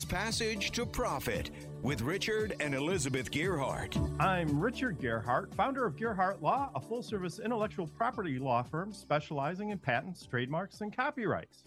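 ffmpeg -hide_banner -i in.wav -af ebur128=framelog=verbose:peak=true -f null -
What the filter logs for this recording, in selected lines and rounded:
Integrated loudness:
  I:         -34.0 LUFS
  Threshold: -44.0 LUFS
Loudness range:
  LRA:         2.5 LU
  Threshold: -53.9 LUFS
  LRA low:   -35.2 LUFS
  LRA high:  -32.7 LUFS
True peak:
  Peak:      -13.7 dBFS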